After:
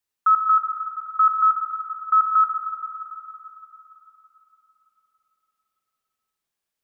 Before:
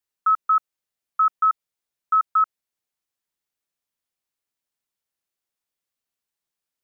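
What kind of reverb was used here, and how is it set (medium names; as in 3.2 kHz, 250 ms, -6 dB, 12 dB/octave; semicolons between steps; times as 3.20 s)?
spring tank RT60 3.6 s, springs 46/55 ms, chirp 80 ms, DRR 3 dB; trim +1.5 dB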